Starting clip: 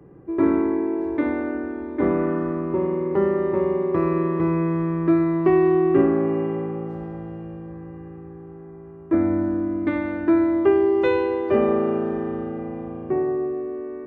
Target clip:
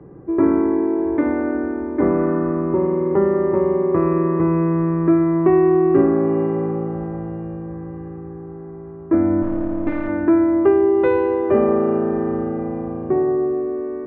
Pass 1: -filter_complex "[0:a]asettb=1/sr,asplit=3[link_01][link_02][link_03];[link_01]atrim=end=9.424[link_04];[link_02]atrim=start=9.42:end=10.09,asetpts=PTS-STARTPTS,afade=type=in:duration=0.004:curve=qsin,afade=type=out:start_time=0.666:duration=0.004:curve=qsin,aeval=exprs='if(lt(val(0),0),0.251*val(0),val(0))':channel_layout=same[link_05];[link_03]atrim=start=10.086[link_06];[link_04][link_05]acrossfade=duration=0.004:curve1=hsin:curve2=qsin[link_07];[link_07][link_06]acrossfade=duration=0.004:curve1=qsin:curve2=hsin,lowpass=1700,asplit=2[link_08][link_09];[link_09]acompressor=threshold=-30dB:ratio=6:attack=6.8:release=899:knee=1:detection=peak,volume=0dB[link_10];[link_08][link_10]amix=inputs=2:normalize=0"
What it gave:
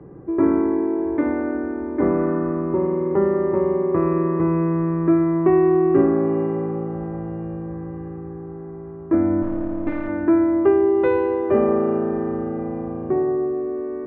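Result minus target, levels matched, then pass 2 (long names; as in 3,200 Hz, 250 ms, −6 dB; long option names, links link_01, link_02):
downward compressor: peak gain reduction +7.5 dB
-filter_complex "[0:a]asettb=1/sr,asplit=3[link_01][link_02][link_03];[link_01]atrim=end=9.424[link_04];[link_02]atrim=start=9.42:end=10.09,asetpts=PTS-STARTPTS,afade=type=in:duration=0.004:curve=qsin,afade=type=out:start_time=0.666:duration=0.004:curve=qsin,aeval=exprs='if(lt(val(0),0),0.251*val(0),val(0))':channel_layout=same[link_05];[link_03]atrim=start=10.086[link_06];[link_04][link_05]acrossfade=duration=0.004:curve1=hsin:curve2=qsin[link_07];[link_07][link_06]acrossfade=duration=0.004:curve1=qsin:curve2=hsin,lowpass=1700,asplit=2[link_08][link_09];[link_09]acompressor=threshold=-21dB:ratio=6:attack=6.8:release=899:knee=1:detection=peak,volume=0dB[link_10];[link_08][link_10]amix=inputs=2:normalize=0"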